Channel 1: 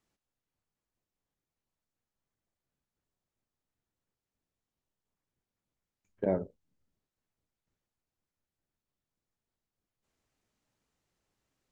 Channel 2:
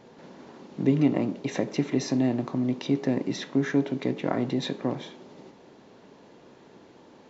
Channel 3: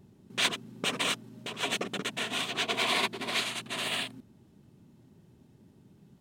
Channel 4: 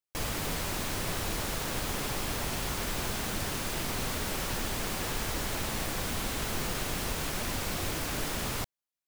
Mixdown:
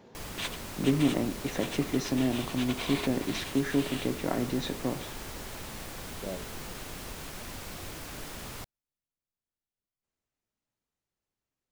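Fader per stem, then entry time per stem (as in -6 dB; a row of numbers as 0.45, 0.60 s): -9.0, -3.5, -9.0, -8.0 dB; 0.00, 0.00, 0.00, 0.00 s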